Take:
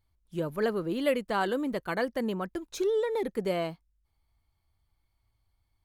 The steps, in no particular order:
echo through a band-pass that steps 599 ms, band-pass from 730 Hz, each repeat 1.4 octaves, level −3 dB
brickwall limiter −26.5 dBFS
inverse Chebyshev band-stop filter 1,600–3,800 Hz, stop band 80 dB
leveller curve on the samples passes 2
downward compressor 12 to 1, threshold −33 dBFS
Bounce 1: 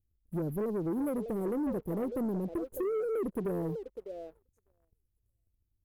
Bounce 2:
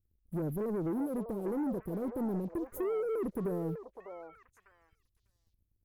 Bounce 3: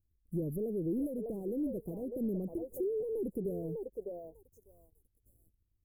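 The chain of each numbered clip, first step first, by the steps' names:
inverse Chebyshev band-stop filter, then downward compressor, then echo through a band-pass that steps, then brickwall limiter, then leveller curve on the samples
brickwall limiter, then inverse Chebyshev band-stop filter, then downward compressor, then leveller curve on the samples, then echo through a band-pass that steps
echo through a band-pass that steps, then downward compressor, then brickwall limiter, then leveller curve on the samples, then inverse Chebyshev band-stop filter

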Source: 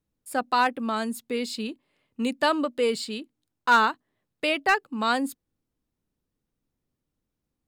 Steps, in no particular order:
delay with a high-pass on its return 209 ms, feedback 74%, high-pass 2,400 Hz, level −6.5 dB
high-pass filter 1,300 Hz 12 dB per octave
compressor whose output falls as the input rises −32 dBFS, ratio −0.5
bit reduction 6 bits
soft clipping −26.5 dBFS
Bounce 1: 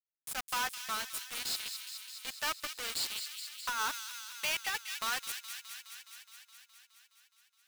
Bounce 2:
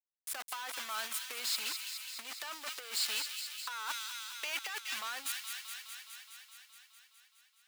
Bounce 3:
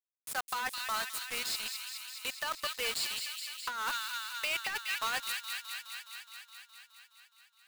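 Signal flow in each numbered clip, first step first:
soft clipping, then high-pass filter, then bit reduction, then delay with a high-pass on its return, then compressor whose output falls as the input rises
bit reduction, then soft clipping, then delay with a high-pass on its return, then compressor whose output falls as the input rises, then high-pass filter
high-pass filter, then bit reduction, then delay with a high-pass on its return, then soft clipping, then compressor whose output falls as the input rises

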